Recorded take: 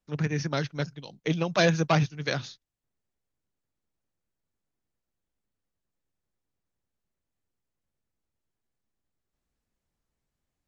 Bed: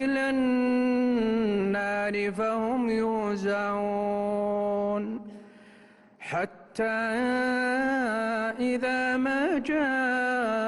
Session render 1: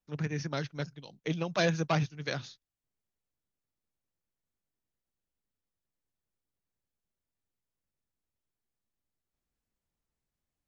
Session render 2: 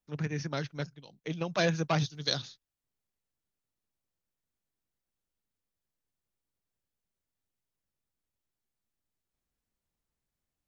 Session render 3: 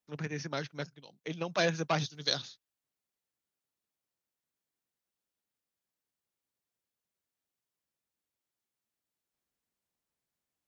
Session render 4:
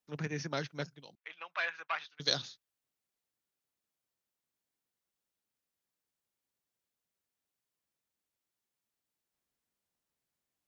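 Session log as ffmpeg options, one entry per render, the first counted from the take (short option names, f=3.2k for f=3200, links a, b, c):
-af "volume=-5.5dB"
-filter_complex "[0:a]asettb=1/sr,asplit=3[a][b][c];[a]atrim=end=1.984[d];[b]atrim=start=1.98:end=2.42,asetpts=PTS-STARTPTS,afade=t=in:d=0.004:c=qsin,afade=t=out:st=0.436:d=0.004:c=qsin,highshelf=f=3k:t=q:w=3:g=7[e];[c]atrim=start=2.416[f];[d][e]acrossfade=d=0.004:c1=hsin:c2=qsin[g];[g][f]acrossfade=d=0.004:c1=qsin:c2=hsin,asplit=3[h][i][j];[h]atrim=end=0.872[k];[i]atrim=start=0.868:end=1.412,asetpts=PTS-STARTPTS,volume=-3.5dB[l];[j]atrim=start=1.408[m];[k][l]acrossfade=d=0.004:c1=hsin:c2=hsin[n];[n][m]acrossfade=d=0.004:c1=hsin:c2=hsin"
-af "highpass=f=240:p=1"
-filter_complex "[0:a]asettb=1/sr,asplit=3[a][b][c];[a]atrim=end=1.154[d];[b]atrim=start=1.15:end=2.2,asetpts=PTS-STARTPTS,afade=t=in:d=0.004:c=qsin,afade=t=out:st=1.046:d=0.004:c=qsin,asuperpass=centerf=1700:order=4:qfactor=1[e];[c]atrim=start=2.196[f];[d][e]acrossfade=d=0.004:c1=hsin:c2=qsin[g];[g][f]acrossfade=d=0.004:c1=qsin:c2=hsin"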